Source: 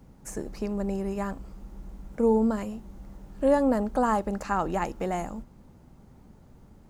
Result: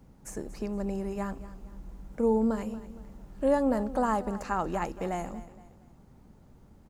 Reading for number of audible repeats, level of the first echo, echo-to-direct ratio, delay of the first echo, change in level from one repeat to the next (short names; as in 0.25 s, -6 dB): 3, -16.0 dB, -15.5 dB, 0.233 s, -8.5 dB